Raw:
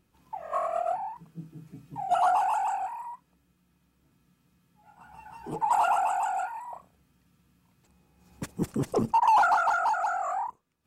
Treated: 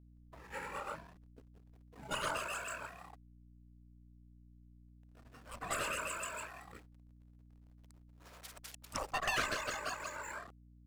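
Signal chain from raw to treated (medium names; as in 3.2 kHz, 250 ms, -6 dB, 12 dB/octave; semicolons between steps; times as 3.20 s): Chebyshev shaper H 2 -23 dB, 4 -34 dB, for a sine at -15.5 dBFS; 6.71–8.85 s: compressor with a negative ratio -42 dBFS, ratio -1; spectral gate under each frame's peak -20 dB weak; hysteresis with a dead band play -52 dBFS; hum 60 Hz, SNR 16 dB; trim +4 dB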